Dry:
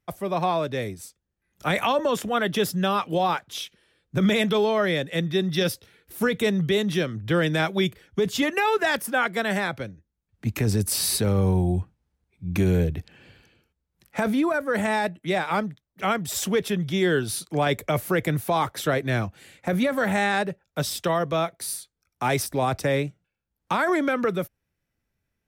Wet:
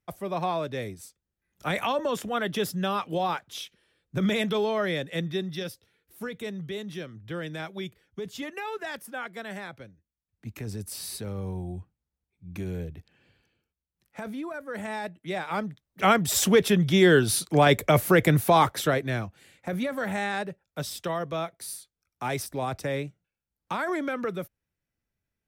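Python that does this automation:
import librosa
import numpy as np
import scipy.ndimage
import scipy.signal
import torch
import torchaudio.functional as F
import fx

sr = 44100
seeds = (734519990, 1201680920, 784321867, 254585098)

y = fx.gain(x, sr, db=fx.line((5.27, -4.5), (5.72, -12.5), (14.48, -12.5), (15.51, -6.0), (16.06, 4.0), (18.62, 4.0), (19.26, -6.5)))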